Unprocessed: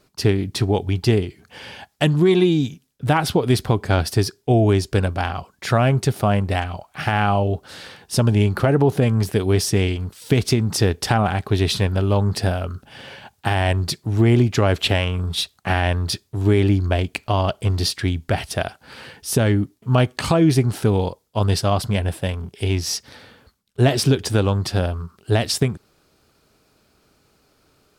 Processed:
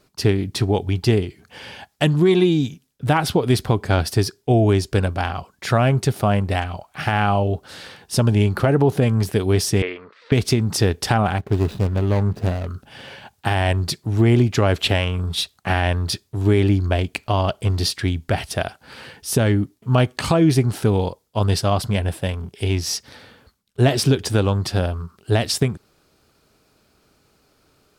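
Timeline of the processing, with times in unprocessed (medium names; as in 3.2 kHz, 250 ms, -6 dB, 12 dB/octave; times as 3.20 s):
9.82–10.32 s: cabinet simulation 470–3400 Hz, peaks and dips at 480 Hz +7 dB, 790 Hz -6 dB, 1.2 kHz +8 dB, 1.9 kHz +7 dB, 3.1 kHz -8 dB
11.38–12.67 s: median filter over 41 samples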